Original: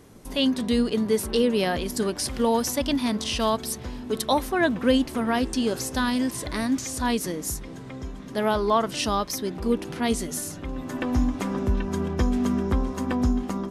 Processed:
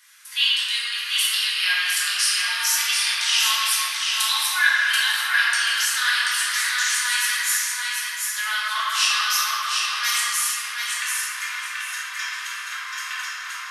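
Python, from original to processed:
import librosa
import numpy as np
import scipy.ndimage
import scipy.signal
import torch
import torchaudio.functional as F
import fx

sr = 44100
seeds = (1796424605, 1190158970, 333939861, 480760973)

y = scipy.signal.sosfilt(scipy.signal.butter(6, 1400.0, 'highpass', fs=sr, output='sos'), x)
y = fx.echo_feedback(y, sr, ms=734, feedback_pct=29, wet_db=-4.0)
y = fx.room_shoebox(y, sr, seeds[0], volume_m3=180.0, walls='hard', distance_m=1.4)
y = y * 10.0 ** (3.0 / 20.0)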